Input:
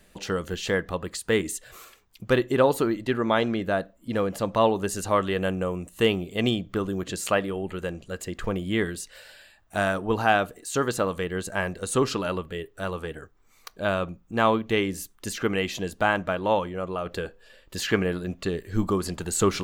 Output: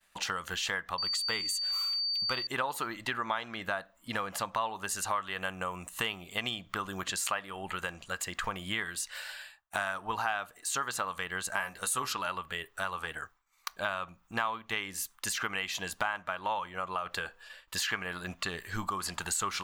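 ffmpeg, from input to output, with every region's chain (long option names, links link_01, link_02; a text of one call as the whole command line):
ffmpeg -i in.wav -filter_complex "[0:a]asettb=1/sr,asplit=3[link_01][link_02][link_03];[link_01]atrim=end=0.984[link_04];[link_02]atrim=start=0.98:end=2.47,asetpts=PTS-STARTPTS,afade=type=in:duration=0.004:curve=qsin,afade=type=out:start_time=1.486:duration=0.004:curve=qsin,bandreject=frequency=1700:width=6.9,aeval=exprs='val(0)+0.0355*sin(2*PI*4600*n/s)':channel_layout=same[link_05];[link_03]atrim=start=2.466[link_06];[link_04][link_05]acrossfade=duration=0.004:curve1=hsin:curve2=qsin[link_07];[link_07][link_06]acrossfade=duration=0.004:curve1=qsin:curve2=hsin,asettb=1/sr,asplit=3[link_08][link_09][link_10];[link_08]atrim=end=11.564[link_11];[link_09]atrim=start=11.56:end=12.13,asetpts=PTS-STARTPTS,afade=type=in:duration=0.004:curve=qsin,afade=type=out:start_time=0.566:duration=0.004:curve=qsin,equalizer=frequency=12000:width=1.8:gain=14,asplit=2[link_12][link_13];[link_13]adelay=15,volume=-7dB[link_14];[link_12][link_14]amix=inputs=2:normalize=0,atrim=end_sample=25137[link_15];[link_10]atrim=start=12.126[link_16];[link_11][link_15]acrossfade=duration=0.004:curve1=hsin:curve2=qsin[link_17];[link_17][link_16]acrossfade=duration=0.004:curve1=qsin:curve2=hsin,agate=range=-33dB:threshold=-48dB:ratio=3:detection=peak,lowshelf=frequency=640:width_type=q:width=1.5:gain=-13.5,acompressor=threshold=-37dB:ratio=4,volume=5.5dB" out.wav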